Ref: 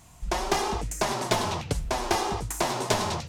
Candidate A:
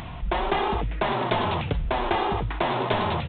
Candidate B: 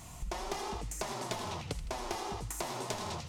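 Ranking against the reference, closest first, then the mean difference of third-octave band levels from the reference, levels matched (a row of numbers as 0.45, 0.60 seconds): B, A; 3.0, 10.5 decibels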